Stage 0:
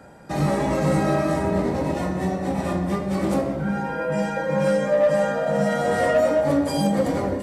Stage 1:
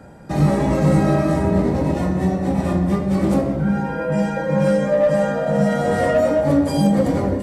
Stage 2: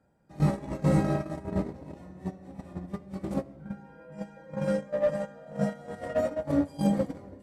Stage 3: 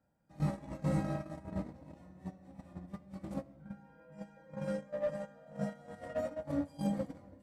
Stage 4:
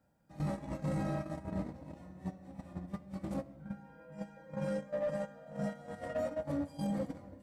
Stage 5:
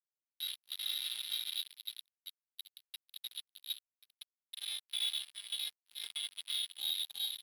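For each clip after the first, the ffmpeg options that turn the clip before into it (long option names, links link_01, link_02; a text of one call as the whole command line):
ffmpeg -i in.wav -af "lowshelf=frequency=320:gain=8.5" out.wav
ffmpeg -i in.wav -af "agate=range=-19dB:threshold=-15dB:ratio=16:detection=peak,volume=-7.5dB" out.wav
ffmpeg -i in.wav -af "equalizer=frequency=400:width_type=o:width=0.21:gain=-12,volume=-8.5dB" out.wav
ffmpeg -i in.wav -af "alimiter=level_in=8dB:limit=-24dB:level=0:latency=1:release=12,volume=-8dB,volume=4dB" out.wav
ffmpeg -i in.wav -af "lowpass=frequency=3400:width_type=q:width=0.5098,lowpass=frequency=3400:width_type=q:width=0.6013,lowpass=frequency=3400:width_type=q:width=0.9,lowpass=frequency=3400:width_type=q:width=2.563,afreqshift=-4000,aecho=1:1:207|314|324|389:0.316|0.422|0.447|0.631,acrusher=bits=4:mix=0:aa=0.5,volume=-4.5dB" out.wav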